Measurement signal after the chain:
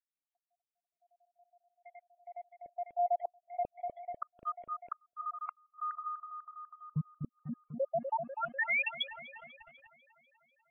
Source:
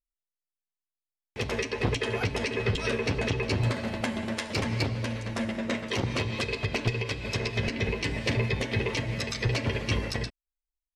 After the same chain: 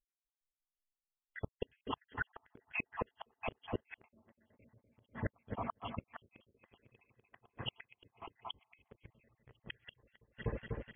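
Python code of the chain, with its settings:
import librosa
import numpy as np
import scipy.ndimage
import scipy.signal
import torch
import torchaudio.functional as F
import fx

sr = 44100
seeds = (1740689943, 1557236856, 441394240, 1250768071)

p1 = fx.spec_dropout(x, sr, seeds[0], share_pct=83)
p2 = p1 + fx.echo_wet_lowpass(p1, sr, ms=247, feedback_pct=65, hz=1300.0, wet_db=-7.0, dry=0)
p3 = fx.gate_flip(p2, sr, shuts_db=-30.0, range_db=-35)
p4 = fx.quant_companded(p3, sr, bits=4)
p5 = p3 + (p4 * librosa.db_to_amplitude(-3.0))
p6 = fx.spec_gate(p5, sr, threshold_db=-30, keep='strong')
p7 = fx.brickwall_lowpass(p6, sr, high_hz=3400.0)
y = p7 * librosa.db_to_amplitude(1.0)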